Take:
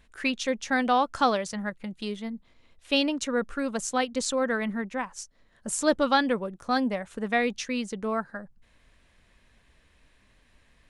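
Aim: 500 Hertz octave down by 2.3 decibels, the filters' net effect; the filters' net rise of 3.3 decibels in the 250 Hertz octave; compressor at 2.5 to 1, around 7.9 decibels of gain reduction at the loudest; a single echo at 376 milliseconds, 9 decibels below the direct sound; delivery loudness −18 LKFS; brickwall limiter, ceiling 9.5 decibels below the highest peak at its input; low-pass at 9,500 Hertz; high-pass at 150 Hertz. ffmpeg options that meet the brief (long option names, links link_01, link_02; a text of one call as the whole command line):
ffmpeg -i in.wav -af "highpass=150,lowpass=9500,equalizer=frequency=250:width_type=o:gain=5,equalizer=frequency=500:width_type=o:gain=-3.5,acompressor=threshold=-30dB:ratio=2.5,alimiter=level_in=3dB:limit=-24dB:level=0:latency=1,volume=-3dB,aecho=1:1:376:0.355,volume=18dB" out.wav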